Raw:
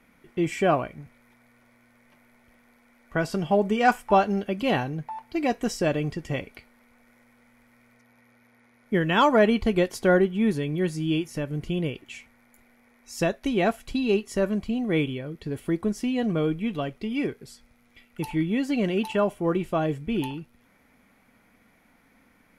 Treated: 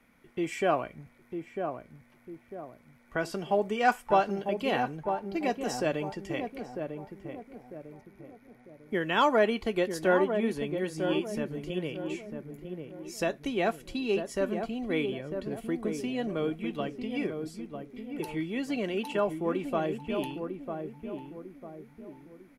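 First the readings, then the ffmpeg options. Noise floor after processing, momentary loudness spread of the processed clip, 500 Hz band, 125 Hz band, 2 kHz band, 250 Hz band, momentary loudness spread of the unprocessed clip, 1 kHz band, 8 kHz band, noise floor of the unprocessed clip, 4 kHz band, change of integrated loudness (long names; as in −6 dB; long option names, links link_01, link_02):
−60 dBFS, 19 LU, −3.5 dB, −9.5 dB, −4.0 dB, −6.5 dB, 12 LU, −3.5 dB, −4.0 dB, −61 dBFS, −4.0 dB, −5.5 dB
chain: -filter_complex "[0:a]acrossover=split=260|5700[link_01][link_02][link_03];[link_01]acompressor=threshold=-39dB:ratio=6[link_04];[link_04][link_02][link_03]amix=inputs=3:normalize=0,asplit=2[link_05][link_06];[link_06]adelay=949,lowpass=frequency=830:poles=1,volume=-5dB,asplit=2[link_07][link_08];[link_08]adelay=949,lowpass=frequency=830:poles=1,volume=0.45,asplit=2[link_09][link_10];[link_10]adelay=949,lowpass=frequency=830:poles=1,volume=0.45,asplit=2[link_11][link_12];[link_12]adelay=949,lowpass=frequency=830:poles=1,volume=0.45,asplit=2[link_13][link_14];[link_14]adelay=949,lowpass=frequency=830:poles=1,volume=0.45,asplit=2[link_15][link_16];[link_16]adelay=949,lowpass=frequency=830:poles=1,volume=0.45[link_17];[link_05][link_07][link_09][link_11][link_13][link_15][link_17]amix=inputs=7:normalize=0,volume=-4dB"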